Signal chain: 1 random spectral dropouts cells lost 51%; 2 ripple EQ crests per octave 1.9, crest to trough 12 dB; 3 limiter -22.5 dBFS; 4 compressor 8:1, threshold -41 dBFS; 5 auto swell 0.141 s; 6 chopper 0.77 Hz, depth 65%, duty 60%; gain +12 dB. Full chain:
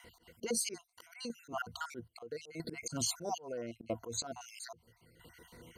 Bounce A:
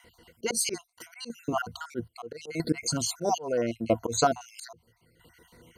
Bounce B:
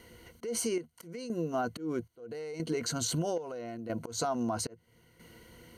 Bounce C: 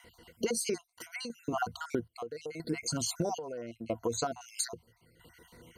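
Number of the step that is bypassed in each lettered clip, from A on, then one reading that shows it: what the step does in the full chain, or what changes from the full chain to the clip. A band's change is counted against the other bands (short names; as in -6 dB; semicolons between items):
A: 4, momentary loudness spread change -5 LU; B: 1, 125 Hz band +6.0 dB; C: 5, 8 kHz band -4.0 dB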